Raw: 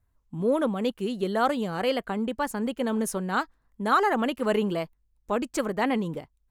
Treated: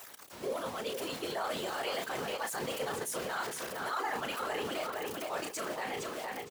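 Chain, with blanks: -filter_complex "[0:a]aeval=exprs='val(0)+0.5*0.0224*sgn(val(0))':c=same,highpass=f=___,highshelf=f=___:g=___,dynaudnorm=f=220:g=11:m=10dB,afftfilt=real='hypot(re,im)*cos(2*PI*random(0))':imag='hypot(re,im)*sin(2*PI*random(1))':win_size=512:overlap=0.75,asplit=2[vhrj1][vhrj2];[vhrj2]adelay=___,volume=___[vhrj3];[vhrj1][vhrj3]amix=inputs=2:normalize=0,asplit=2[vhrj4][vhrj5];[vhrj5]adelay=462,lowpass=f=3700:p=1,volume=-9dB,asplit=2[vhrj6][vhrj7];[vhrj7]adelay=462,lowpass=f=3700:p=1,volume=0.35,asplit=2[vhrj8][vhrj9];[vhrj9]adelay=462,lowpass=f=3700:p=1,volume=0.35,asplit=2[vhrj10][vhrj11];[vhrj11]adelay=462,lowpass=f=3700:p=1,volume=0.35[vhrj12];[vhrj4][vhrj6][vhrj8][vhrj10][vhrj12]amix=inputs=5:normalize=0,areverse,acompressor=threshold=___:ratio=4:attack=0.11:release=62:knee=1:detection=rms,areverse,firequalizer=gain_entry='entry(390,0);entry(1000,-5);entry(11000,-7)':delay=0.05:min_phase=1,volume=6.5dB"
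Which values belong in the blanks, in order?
780, 3100, 7, 34, -10dB, -34dB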